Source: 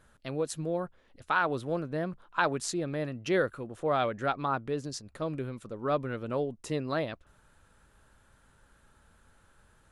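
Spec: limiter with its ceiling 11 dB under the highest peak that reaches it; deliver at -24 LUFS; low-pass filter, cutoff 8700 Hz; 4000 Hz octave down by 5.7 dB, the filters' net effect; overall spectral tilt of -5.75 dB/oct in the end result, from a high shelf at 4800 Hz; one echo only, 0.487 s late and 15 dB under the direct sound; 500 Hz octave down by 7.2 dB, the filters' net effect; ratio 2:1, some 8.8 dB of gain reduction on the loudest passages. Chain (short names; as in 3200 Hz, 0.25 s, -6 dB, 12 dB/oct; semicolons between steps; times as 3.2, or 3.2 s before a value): LPF 8700 Hz; bell 500 Hz -9 dB; bell 4000 Hz -3.5 dB; high shelf 4800 Hz -7 dB; compressor 2:1, threshold -40 dBFS; limiter -33 dBFS; echo 0.487 s -15 dB; gain +20 dB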